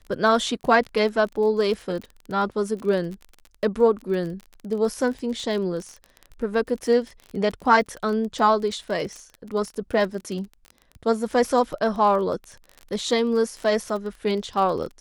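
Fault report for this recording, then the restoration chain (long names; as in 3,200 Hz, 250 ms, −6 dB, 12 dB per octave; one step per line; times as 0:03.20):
surface crackle 28 per second −30 dBFS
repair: click removal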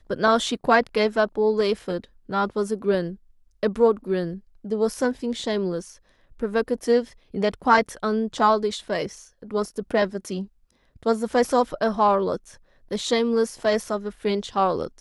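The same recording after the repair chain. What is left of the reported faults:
none of them is left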